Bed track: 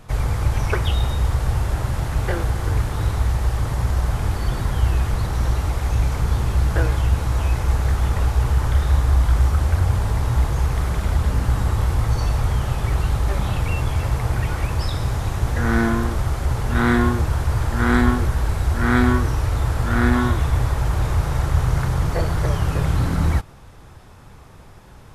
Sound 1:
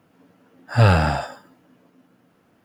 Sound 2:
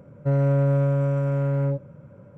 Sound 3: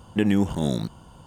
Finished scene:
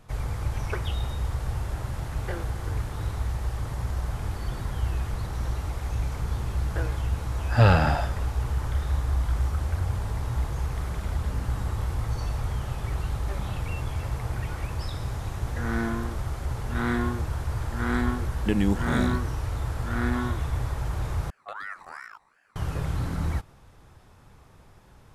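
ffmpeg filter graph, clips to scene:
-filter_complex "[3:a]asplit=2[s0][s1];[0:a]volume=0.355[s2];[1:a]lowpass=5300[s3];[s1]aeval=exprs='val(0)*sin(2*PI*1300*n/s+1300*0.3/2.7*sin(2*PI*2.7*n/s))':c=same[s4];[s2]asplit=2[s5][s6];[s5]atrim=end=21.304[s7];[s4]atrim=end=1.26,asetpts=PTS-STARTPTS,volume=0.188[s8];[s6]atrim=start=22.556[s9];[s3]atrim=end=2.64,asetpts=PTS-STARTPTS,volume=0.708,afade=t=in:d=0.004:c=hsin,afade=t=out:st=2.636:d=0.004:c=hsin,adelay=6800[s10];[s0]atrim=end=1.26,asetpts=PTS-STARTPTS,volume=0.668,afade=t=in:d=0.004:c=hsin,afade=t=out:st=1.256:d=0.004:c=hsin,adelay=18300[s11];[s7][s8]acrossfade=d=0.004:c1=hsin:c2=hsin[s12];[s12][s9]acrossfade=d=0.004:c1=hsin:c2=hsin[s13];[s13][s10][s11]amix=inputs=3:normalize=0"

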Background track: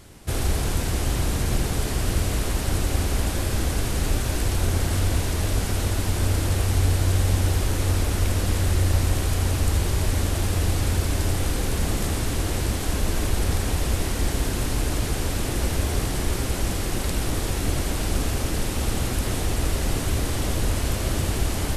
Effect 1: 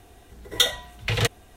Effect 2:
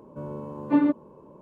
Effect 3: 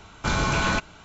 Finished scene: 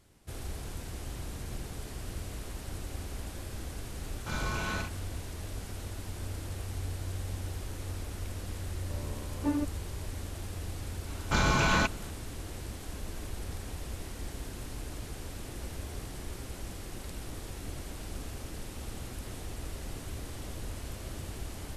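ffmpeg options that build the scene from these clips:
-filter_complex "[3:a]asplit=2[s0][s1];[0:a]volume=0.158[s2];[s0]aecho=1:1:45|70:0.631|0.447,atrim=end=1.04,asetpts=PTS-STARTPTS,volume=0.211,afade=t=in:d=0.004:c=hsin,afade=t=out:st=1.036:d=0.004:c=hsin,adelay=4020[s3];[2:a]atrim=end=1.41,asetpts=PTS-STARTPTS,volume=0.316,afade=t=in:d=0.004:c=hsin,afade=t=out:st=1.406:d=0.004:c=hsin,adelay=8730[s4];[s1]atrim=end=1.04,asetpts=PTS-STARTPTS,volume=0.75,afade=t=in:d=0.004:c=hsin,afade=t=out:st=1.036:d=0.004:c=hsin,adelay=11070[s5];[s2][s3][s4][s5]amix=inputs=4:normalize=0"

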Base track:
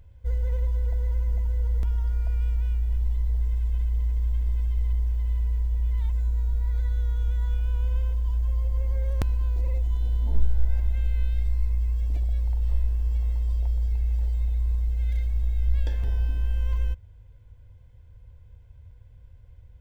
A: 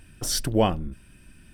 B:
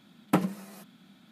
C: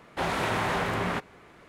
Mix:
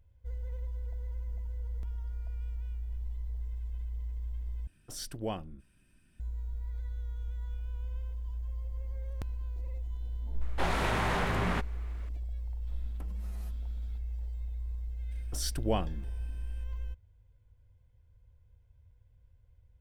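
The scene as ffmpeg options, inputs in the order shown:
-filter_complex "[1:a]asplit=2[s0][s1];[0:a]volume=0.237[s2];[3:a]asubboost=boost=3:cutoff=250[s3];[2:a]acompressor=threshold=0.00631:ratio=6:attack=3.2:release=140:knee=1:detection=peak[s4];[s2]asplit=2[s5][s6];[s5]atrim=end=4.674[s7];[s0]atrim=end=1.53,asetpts=PTS-STARTPTS,volume=0.188[s8];[s6]atrim=start=6.196[s9];[s3]atrim=end=1.68,asetpts=PTS-STARTPTS,volume=0.708,afade=t=in:d=0.004:c=hsin,afade=t=out:st=1.676:d=0.004:c=hsin,adelay=10410[s10];[s4]atrim=end=1.31,asetpts=PTS-STARTPTS,volume=0.473,afade=t=in:d=0.004:c=hsin,afade=t=out:st=1.306:d=0.004:c=hsin,adelay=12670[s11];[s1]atrim=end=1.53,asetpts=PTS-STARTPTS,volume=0.335,afade=t=in:d=0.004:c=hsin,afade=t=out:st=1.526:d=0.004:c=hsin,adelay=15110[s12];[s7][s8]acrossfade=d=0.004:c1=hsin:c2=hsin[s13];[s13][s9]acrossfade=d=0.004:c1=hsin:c2=hsin[s14];[s14][s10][s11][s12]amix=inputs=4:normalize=0"

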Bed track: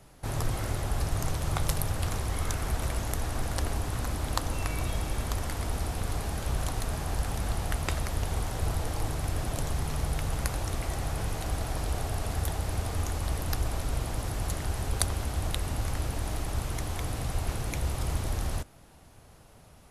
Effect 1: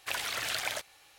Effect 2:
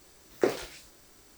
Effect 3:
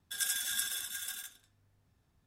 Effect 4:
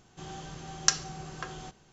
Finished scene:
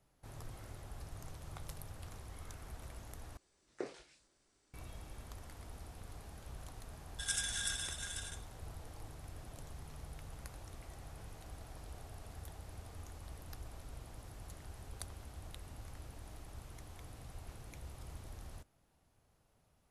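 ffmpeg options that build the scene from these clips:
-filter_complex "[0:a]volume=0.112[s0];[2:a]aresample=22050,aresample=44100[s1];[3:a]aresample=22050,aresample=44100[s2];[s0]asplit=2[s3][s4];[s3]atrim=end=3.374[s5];[s1]atrim=end=1.37,asetpts=PTS-STARTPTS,volume=0.141[s6];[s4]atrim=start=4.736[s7];[s2]atrim=end=2.26,asetpts=PTS-STARTPTS,volume=0.75,afade=t=in:d=0.004:c=hsin,afade=t=out:st=2.256:d=0.004:c=hsin,adelay=7080[s8];[s5][s6]acrossfade=d=0.004:c1=hsin:c2=hsin[s9];[s9][s7]acrossfade=d=0.004:c1=hsin:c2=hsin[s10];[s10][s8]amix=inputs=2:normalize=0"

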